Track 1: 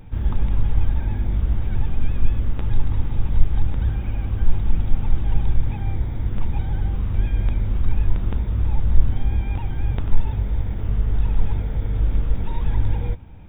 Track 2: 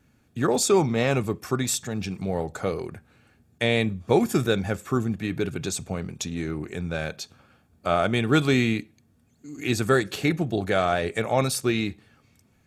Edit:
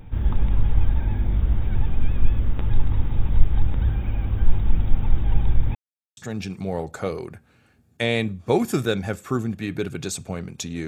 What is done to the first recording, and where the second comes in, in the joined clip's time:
track 1
0:05.75–0:06.17: silence
0:06.17: continue with track 2 from 0:01.78

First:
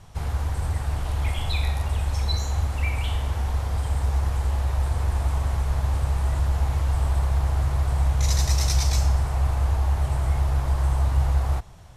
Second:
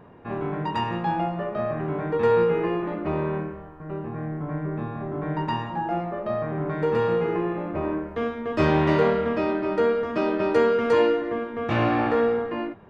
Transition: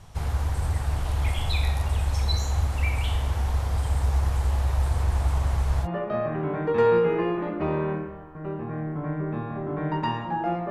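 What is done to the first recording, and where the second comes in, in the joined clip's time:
first
0:05.02–0:05.88: highs frequency-modulated by the lows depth 0.14 ms
0:05.85: continue with second from 0:01.30, crossfade 0.06 s

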